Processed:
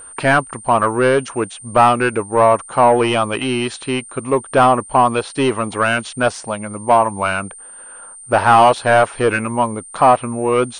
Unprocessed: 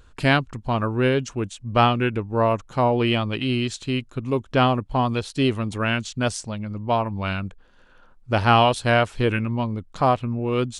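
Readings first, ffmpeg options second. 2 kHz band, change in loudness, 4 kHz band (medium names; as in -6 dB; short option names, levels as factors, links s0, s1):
+6.5 dB, +6.5 dB, +1.0 dB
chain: -filter_complex "[0:a]asplit=2[s0][s1];[s1]highpass=f=720:p=1,volume=11.2,asoftclip=type=tanh:threshold=0.794[s2];[s0][s2]amix=inputs=2:normalize=0,lowpass=f=1500:p=1,volume=0.501,equalizer=f=890:t=o:w=2.6:g=7,aeval=exprs='val(0)+0.0282*sin(2*PI*8900*n/s)':c=same,volume=0.631"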